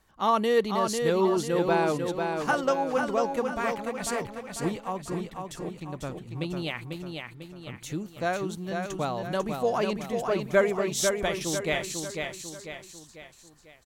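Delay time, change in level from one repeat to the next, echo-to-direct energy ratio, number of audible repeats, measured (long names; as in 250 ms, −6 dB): 496 ms, −6.5 dB, −4.0 dB, 4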